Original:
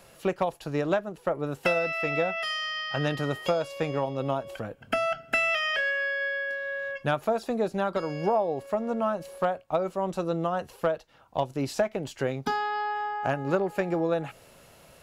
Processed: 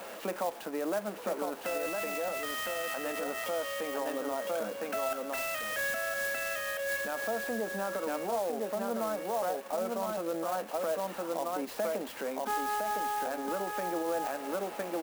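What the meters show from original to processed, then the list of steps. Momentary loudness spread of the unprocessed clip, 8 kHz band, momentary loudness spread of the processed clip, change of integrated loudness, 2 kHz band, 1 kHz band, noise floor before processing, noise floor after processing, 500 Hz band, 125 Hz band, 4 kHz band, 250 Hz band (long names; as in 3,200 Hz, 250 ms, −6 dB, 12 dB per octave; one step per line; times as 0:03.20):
6 LU, +7.5 dB, 3 LU, −5.0 dB, −6.0 dB, −4.0 dB, −55 dBFS, −44 dBFS, −4.5 dB, −18.0 dB, −6.5 dB, −6.5 dB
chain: converter with a step at zero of −37 dBFS
on a send: single-tap delay 1,009 ms −4.5 dB
on the sum: brickwall limiter −22 dBFS, peak gain reduction 11 dB
elliptic high-pass filter 200 Hz
notch filter 380 Hz, Q 12
in parallel at 0 dB: speech leveller
on the sum: low-pass filter 1,800 Hz 6 dB per octave
low-shelf EQ 370 Hz −7.5 dB
converter with an unsteady clock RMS 0.042 ms
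level −5.5 dB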